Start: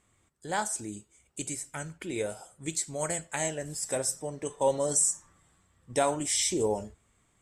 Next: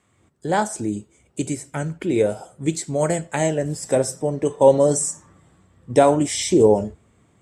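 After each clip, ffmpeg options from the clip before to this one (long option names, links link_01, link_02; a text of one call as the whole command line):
ffmpeg -i in.wav -filter_complex "[0:a]highpass=84,highshelf=frequency=6600:gain=-9,acrossover=split=670|1600[link_01][link_02][link_03];[link_01]dynaudnorm=framelen=130:gausssize=3:maxgain=8.5dB[link_04];[link_04][link_02][link_03]amix=inputs=3:normalize=0,volume=6.5dB" out.wav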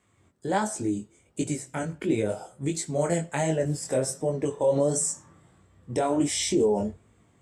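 ffmpeg -i in.wav -af "alimiter=limit=-12.5dB:level=0:latency=1:release=65,flanger=delay=18.5:depth=5.6:speed=1.4" out.wav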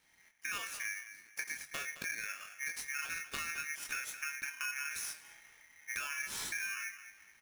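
ffmpeg -i in.wav -filter_complex "[0:a]acompressor=threshold=-35dB:ratio=6,asplit=2[link_01][link_02];[link_02]adelay=217,lowpass=frequency=2800:poles=1,volume=-12.5dB,asplit=2[link_03][link_04];[link_04]adelay=217,lowpass=frequency=2800:poles=1,volume=0.29,asplit=2[link_05][link_06];[link_06]adelay=217,lowpass=frequency=2800:poles=1,volume=0.29[link_07];[link_01][link_03][link_05][link_07]amix=inputs=4:normalize=0,aeval=exprs='val(0)*sgn(sin(2*PI*2000*n/s))':channel_layout=same,volume=-3dB" out.wav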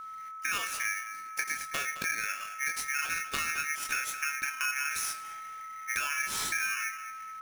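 ffmpeg -i in.wav -af "aeval=exprs='val(0)+0.00447*sin(2*PI*1300*n/s)':channel_layout=same,volume=7dB" out.wav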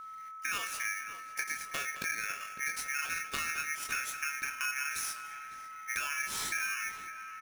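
ffmpeg -i in.wav -filter_complex "[0:a]asplit=2[link_01][link_02];[link_02]adelay=554,lowpass=frequency=1700:poles=1,volume=-10.5dB,asplit=2[link_03][link_04];[link_04]adelay=554,lowpass=frequency=1700:poles=1,volume=0.5,asplit=2[link_05][link_06];[link_06]adelay=554,lowpass=frequency=1700:poles=1,volume=0.5,asplit=2[link_07][link_08];[link_08]adelay=554,lowpass=frequency=1700:poles=1,volume=0.5,asplit=2[link_09][link_10];[link_10]adelay=554,lowpass=frequency=1700:poles=1,volume=0.5[link_11];[link_01][link_03][link_05][link_07][link_09][link_11]amix=inputs=6:normalize=0,volume=-3dB" out.wav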